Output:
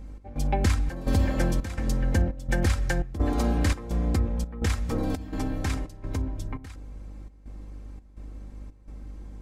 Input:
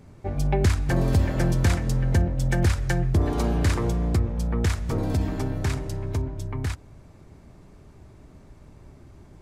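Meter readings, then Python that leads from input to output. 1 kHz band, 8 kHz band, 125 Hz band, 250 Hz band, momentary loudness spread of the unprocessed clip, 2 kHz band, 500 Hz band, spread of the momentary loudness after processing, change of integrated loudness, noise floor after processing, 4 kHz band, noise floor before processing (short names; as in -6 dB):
-1.5 dB, -2.0 dB, -5.0 dB, -2.0 dB, 8 LU, -1.5 dB, -3.5 dB, 20 LU, -3.0 dB, -51 dBFS, -2.0 dB, -50 dBFS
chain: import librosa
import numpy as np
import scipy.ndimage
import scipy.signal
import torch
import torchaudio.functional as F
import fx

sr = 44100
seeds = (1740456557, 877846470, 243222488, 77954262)

y = fx.dmg_buzz(x, sr, base_hz=50.0, harmonics=10, level_db=-40.0, tilt_db=-9, odd_only=False)
y = fx.step_gate(y, sr, bpm=169, pattern='xx..xxxx', floor_db=-12.0, edge_ms=4.5)
y = y + 0.54 * np.pad(y, (int(3.8 * sr / 1000.0), 0))[:len(y)]
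y = F.gain(torch.from_numpy(y), -2.0).numpy()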